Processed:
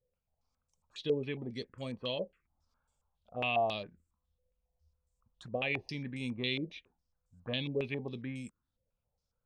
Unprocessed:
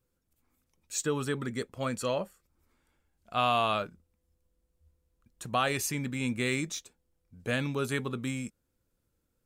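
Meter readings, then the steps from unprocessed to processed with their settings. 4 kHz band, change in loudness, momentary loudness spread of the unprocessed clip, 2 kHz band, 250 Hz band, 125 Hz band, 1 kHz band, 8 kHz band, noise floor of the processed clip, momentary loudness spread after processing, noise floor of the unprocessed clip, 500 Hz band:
-2.5 dB, -5.0 dB, 12 LU, -4.5 dB, -5.5 dB, -6.0 dB, -8.5 dB, under -25 dB, under -85 dBFS, 15 LU, -79 dBFS, -3.0 dB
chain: envelope phaser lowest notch 310 Hz, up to 1400 Hz, full sweep at -31 dBFS; stepped low-pass 7.3 Hz 510–7700 Hz; gain -6 dB

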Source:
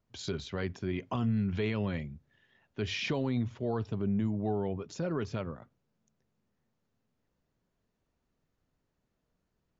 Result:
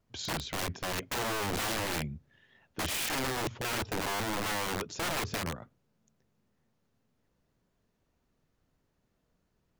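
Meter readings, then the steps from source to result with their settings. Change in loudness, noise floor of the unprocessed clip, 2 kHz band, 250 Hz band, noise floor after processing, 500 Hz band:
+0.5 dB, -81 dBFS, +7.5 dB, -6.5 dB, -77 dBFS, -2.0 dB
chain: wow and flutter 20 cents; wrapped overs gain 31.5 dB; gain +4 dB

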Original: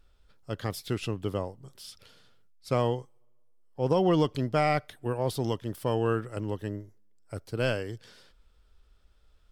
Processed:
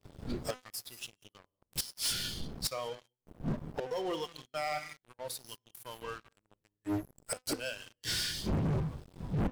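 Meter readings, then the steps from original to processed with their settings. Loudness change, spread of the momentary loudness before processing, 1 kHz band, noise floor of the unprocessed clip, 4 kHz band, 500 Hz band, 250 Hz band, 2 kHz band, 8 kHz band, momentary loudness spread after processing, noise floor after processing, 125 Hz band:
-7.0 dB, 17 LU, -8.5 dB, -62 dBFS, +4.5 dB, -10.5 dB, -6.5 dB, -4.5 dB, +9.5 dB, 14 LU, under -85 dBFS, -6.0 dB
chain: wind noise 190 Hz -42 dBFS; high shelf 3300 Hz +11.5 dB; non-linear reverb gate 0.22 s rising, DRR 6.5 dB; flipped gate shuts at -27 dBFS, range -27 dB; spectral noise reduction 16 dB; de-hum 253.4 Hz, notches 27; sample leveller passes 5

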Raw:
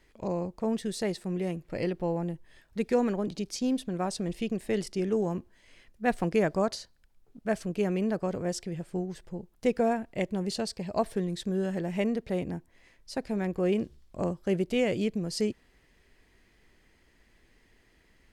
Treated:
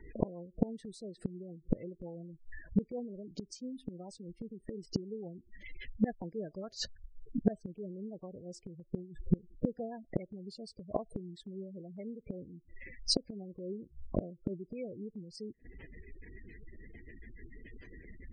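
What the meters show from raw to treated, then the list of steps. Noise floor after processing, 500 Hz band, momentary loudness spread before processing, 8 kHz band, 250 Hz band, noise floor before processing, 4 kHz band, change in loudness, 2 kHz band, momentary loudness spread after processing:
-66 dBFS, -12.0 dB, 9 LU, -7.0 dB, -7.5 dB, -65 dBFS, -1.5 dB, -9.0 dB, -14.5 dB, 19 LU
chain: rotary speaker horn 7 Hz; spectral gate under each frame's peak -15 dB strong; flipped gate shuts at -31 dBFS, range -29 dB; gain +16 dB

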